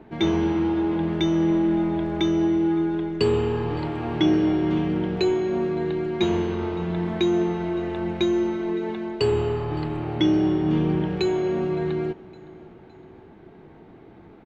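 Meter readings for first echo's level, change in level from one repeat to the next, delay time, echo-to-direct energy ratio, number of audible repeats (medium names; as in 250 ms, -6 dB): -22.5 dB, -6.0 dB, 563 ms, -21.5 dB, 3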